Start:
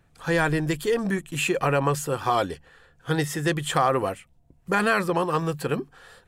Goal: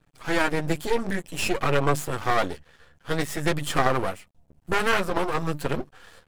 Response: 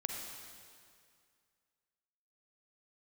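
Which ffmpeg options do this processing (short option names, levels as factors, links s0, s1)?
-af "flanger=delay=6.5:depth=6.7:regen=-5:speed=0.54:shape=triangular,aeval=exprs='max(val(0),0)':c=same,volume=2"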